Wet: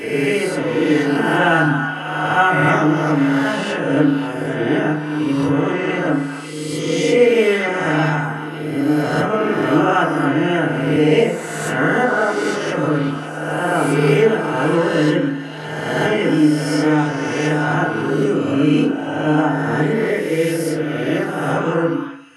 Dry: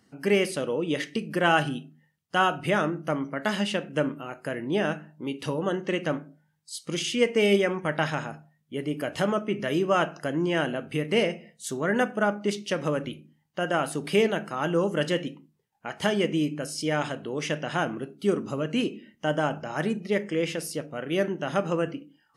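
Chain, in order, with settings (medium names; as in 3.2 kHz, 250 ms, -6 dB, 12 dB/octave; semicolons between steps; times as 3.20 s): reverse spectral sustain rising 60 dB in 1.74 s; 2.67–3.10 s: peaking EQ 5.5 kHz +5.5 dB -> +13.5 dB 0.62 oct; repeats whose band climbs or falls 274 ms, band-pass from 1.2 kHz, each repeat 1.4 oct, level -5.5 dB; FDN reverb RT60 0.52 s, low-frequency decay 1.1×, high-frequency decay 0.35×, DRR -8 dB; trim -5 dB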